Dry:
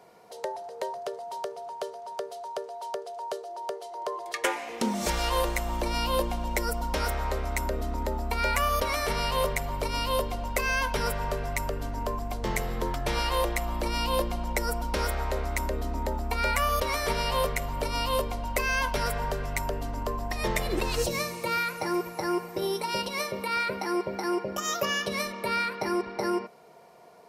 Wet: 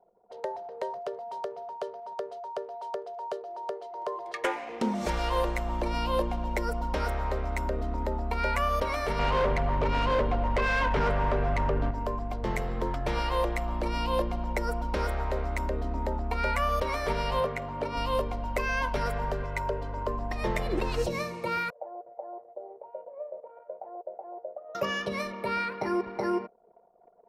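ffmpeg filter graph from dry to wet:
-filter_complex "[0:a]asettb=1/sr,asplit=3[a][b][c];[a]atrim=end=9.194[d];[b]atrim=start=9.19:end=11.91,asetpts=PTS-STARTPTS,afade=t=in:d=0.004:c=qsin,afade=t=out:st=2.716:d=0.004:c=qsin,lowpass=3k,acontrast=77,asoftclip=type=hard:threshold=-21.5dB[e];[c]atrim=start=11.906[f];[d][e]acrossfade=d=0.004:c1=hsin:c2=qsin[g];[g][f]acrossfade=d=0.004:c1=qsin:c2=hsin,asettb=1/sr,asplit=3[h][i][j];[h]atrim=end=17.404[k];[i]atrim=start=17.4:end=17.97,asetpts=PTS-STARTPTS,afade=t=in:d=0.004:c=qsin,afade=t=out:st=0.566:d=0.004:c=qsin,highpass=100,aemphasis=mode=reproduction:type=cd[l];[j]atrim=start=17.966[m];[k][l]acrossfade=d=0.004:c1=hsin:c2=qsin[n];[n][m]acrossfade=d=0.004:c1=qsin:c2=hsin,asettb=1/sr,asplit=3[o][p][q];[o]atrim=end=19.434[r];[p]atrim=start=19.43:end=20.08,asetpts=PTS-STARTPTS,afade=t=in:d=0.004:c=qsin,afade=t=out:st=0.646:d=0.004:c=qsin,highpass=f=85:p=1,highshelf=f=7.3k:g=-7,aecho=1:1:2:0.6,atrim=end_sample=28665[s];[q]atrim=start=20.076[t];[r][s]acrossfade=d=0.004:c1=hsin:c2=qsin[u];[u][t]acrossfade=d=0.004:c1=qsin:c2=hsin,asettb=1/sr,asplit=3[v][w][x];[v]atrim=end=21.704[y];[w]atrim=start=21.7:end=24.75,asetpts=PTS-STARTPTS,afade=t=in:d=0.004:c=qsin,afade=t=out:st=3.046:d=0.004:c=qsin,asuperpass=centerf=630:order=4:qfactor=3.1,aecho=1:1:135:0.15,atrim=end_sample=134505[z];[x]atrim=start=24.746[aa];[y][z]acrossfade=d=0.004:c1=hsin:c2=qsin[ab];[ab][aa]acrossfade=d=0.004:c1=qsin:c2=hsin,lowpass=f=1.9k:p=1,anlmdn=0.01"

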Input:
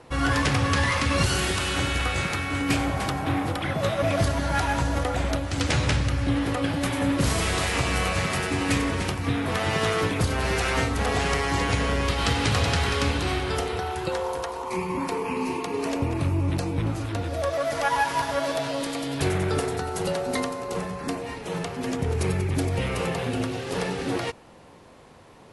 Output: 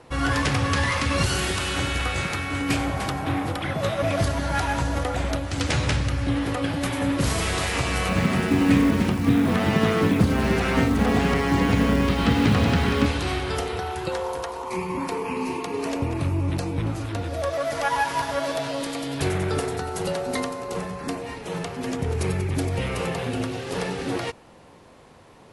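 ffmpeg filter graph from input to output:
-filter_complex "[0:a]asettb=1/sr,asplit=3[a][b][c];[a]atrim=end=8.094[d];[b]atrim=start=8.09:end=13.06,asetpts=PTS-STARTPTS,afade=t=in:d=0.004:c=qsin,afade=t=out:st=4.966:d=0.004:c=qsin,equalizer=f=220:t=o:w=1:g=13.5,acrusher=bits=6:mode=log:mix=0:aa=0.000001,acrossover=split=3600[e][f];[f]acompressor=threshold=-39dB:ratio=4:attack=1:release=60[g];[e][g]amix=inputs=2:normalize=0[h];[c]atrim=start=13.056[i];[d][h]acrossfade=d=0.004:c1=hsin:c2=qsin[j];[j][i]acrossfade=d=0.004:c1=qsin:c2=hsin"

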